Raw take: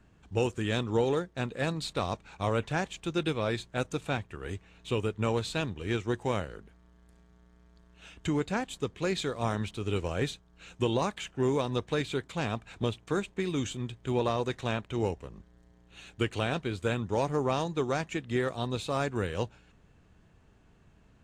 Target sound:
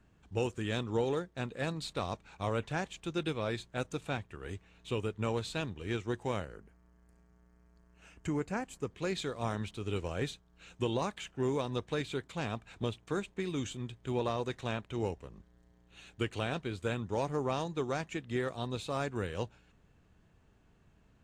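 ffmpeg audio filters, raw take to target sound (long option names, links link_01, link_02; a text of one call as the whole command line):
ffmpeg -i in.wav -filter_complex "[0:a]asettb=1/sr,asplit=3[link_01][link_02][link_03];[link_01]atrim=end=6.454[link_04];[link_02]atrim=start=6.45:end=8.91,asetpts=PTS-STARTPTS,afade=type=in:duration=0.004:curve=qsin,afade=type=out:start_time=2.456:duration=0.004:curve=qsin,equalizer=frequency=3600:width_type=o:width=0.42:gain=-14.5[link_05];[link_03]atrim=start=8.906[link_06];[link_04][link_05]acrossfade=duration=0.004:curve1=hsin:curve2=qsin[link_07];[link_07][link_06]acrossfade=duration=0.004:curve1=qsin:curve2=hsin,volume=-4.5dB" out.wav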